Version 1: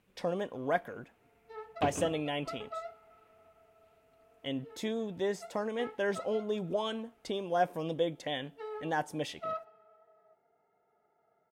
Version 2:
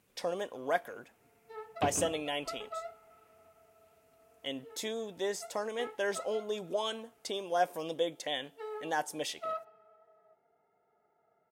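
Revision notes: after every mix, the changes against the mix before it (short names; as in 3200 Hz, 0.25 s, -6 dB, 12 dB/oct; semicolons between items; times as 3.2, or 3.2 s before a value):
speech: add tone controls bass -13 dB, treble +9 dB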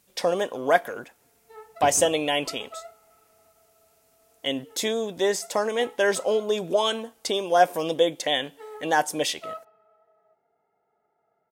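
speech +11.0 dB; second sound: remove notch 820 Hz, Q 17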